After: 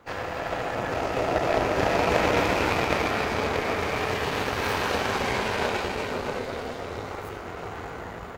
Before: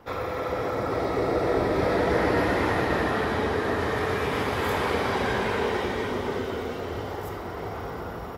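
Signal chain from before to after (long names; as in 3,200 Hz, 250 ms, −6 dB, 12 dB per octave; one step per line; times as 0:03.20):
formants moved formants +4 semitones
harmonic generator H 3 −14 dB, 8 −27 dB, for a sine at −11.5 dBFS
level +5 dB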